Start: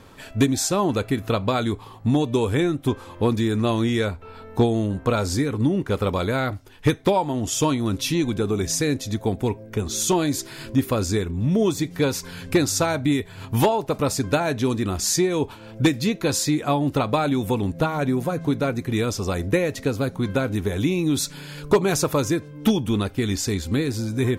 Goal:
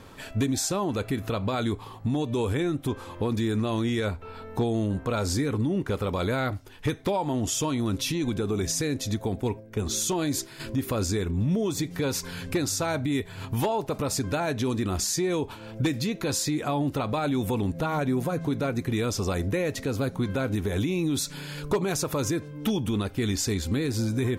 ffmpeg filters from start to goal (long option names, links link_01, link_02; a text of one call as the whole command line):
ffmpeg -i in.wav -filter_complex "[0:a]asettb=1/sr,asplit=3[link_01][link_02][link_03];[link_01]atrim=end=9.404[link_04];[link_02]atrim=start=9.4:end=10.6,asetpts=PTS-STARTPTS,afade=type=in:duration=0.004:curve=qsin,afade=type=out:start_time=1.196:duration=0.004:curve=qsin,agate=range=-7dB:threshold=-31dB:ratio=16:detection=peak[link_05];[link_03]atrim=start=10.596[link_06];[link_04][link_05]acrossfade=duration=0.004:curve1=hsin:curve2=qsin[link_07];[link_07][link_06]acrossfade=duration=0.004:curve1=qsin:curve2=hsin,alimiter=limit=-18.5dB:level=0:latency=1:release=91" out.wav